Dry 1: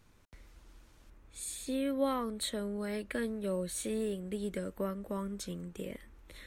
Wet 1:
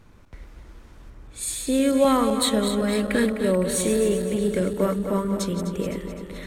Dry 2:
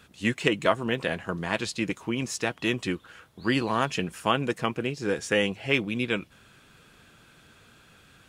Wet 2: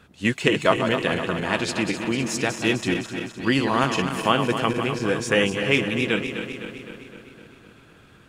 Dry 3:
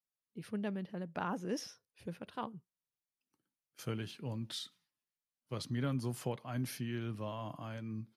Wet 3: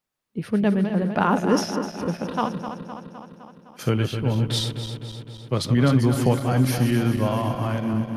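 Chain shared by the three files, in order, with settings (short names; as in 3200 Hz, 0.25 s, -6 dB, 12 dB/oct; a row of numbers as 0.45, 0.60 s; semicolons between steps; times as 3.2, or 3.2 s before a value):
regenerating reverse delay 0.128 s, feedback 79%, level -8 dB; mismatched tape noise reduction decoder only; match loudness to -23 LUFS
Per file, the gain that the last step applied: +12.5, +3.5, +17.0 dB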